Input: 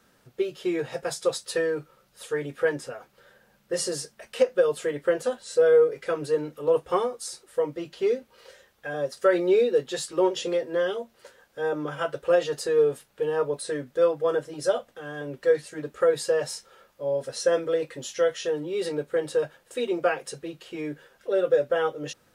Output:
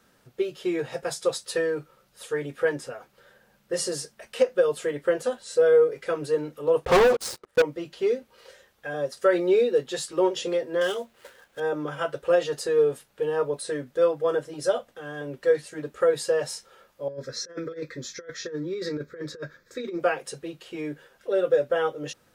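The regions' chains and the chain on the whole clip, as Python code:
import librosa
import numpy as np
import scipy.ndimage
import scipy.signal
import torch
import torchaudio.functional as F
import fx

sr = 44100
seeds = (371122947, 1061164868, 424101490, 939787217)

y = fx.chain(x, sr, fx.lowpass(hz=1300.0, slope=6),
    fx.leveller(passes=5), at=(6.85, 7.62))
y = fx.chain(y, sr, fx.median_filter(points=9),
    fx.high_shelf(hz=2000.0, db=11.0), at=(10.81, 11.6))
y = fx.chain(y, sr, fx.high_shelf(hz=8100.0, db=-6.0),
    fx.over_compress(threshold_db=-28.0, ratio=-0.5),
    fx.fixed_phaser(hz=2900.0, stages=6), at=(17.08, 20.0))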